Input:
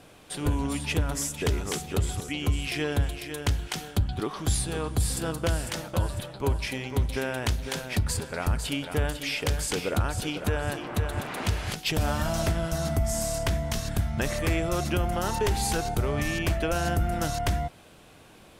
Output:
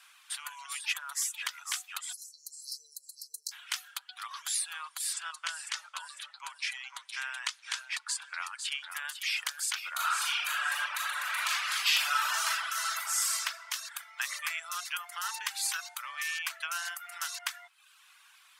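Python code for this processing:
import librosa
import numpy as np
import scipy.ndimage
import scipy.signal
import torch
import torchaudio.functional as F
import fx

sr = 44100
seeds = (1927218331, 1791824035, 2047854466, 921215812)

y = fx.brickwall_bandstop(x, sr, low_hz=540.0, high_hz=4000.0, at=(2.12, 3.51), fade=0.02)
y = fx.lowpass(y, sr, hz=9200.0, slope=24, at=(5.13, 8.91))
y = fx.reverb_throw(y, sr, start_s=9.93, length_s=3.53, rt60_s=1.9, drr_db=-7.5)
y = fx.quant_float(y, sr, bits=8, at=(13.96, 14.42))
y = scipy.signal.sosfilt(scipy.signal.butter(6, 1100.0, 'highpass', fs=sr, output='sos'), y)
y = fx.dereverb_blind(y, sr, rt60_s=0.74)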